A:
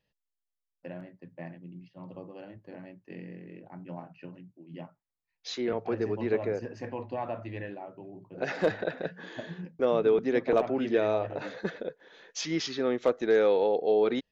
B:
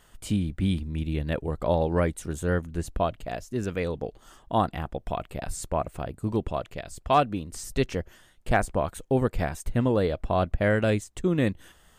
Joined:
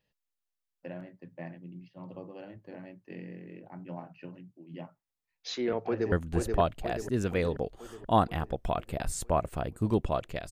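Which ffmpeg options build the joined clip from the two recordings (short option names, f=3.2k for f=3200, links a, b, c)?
-filter_complex "[0:a]apad=whole_dur=10.51,atrim=end=10.51,atrim=end=6.122[a];[1:a]atrim=start=2.538:end=6.93[b];[a][b]acrossfade=d=0.004:c1=hsin:c2=hsin,asplit=2[c][d];[d]afade=t=in:st=5.84:d=0.01,afade=t=out:st=6.12:d=0.01,aecho=0:1:480|960|1440|1920|2400|2880|3360|3840|4320:0.668344|0.401006|0.240604|0.144362|0.0866174|0.0519704|0.0311823|0.0187094|0.0112256[e];[c][e]amix=inputs=2:normalize=0"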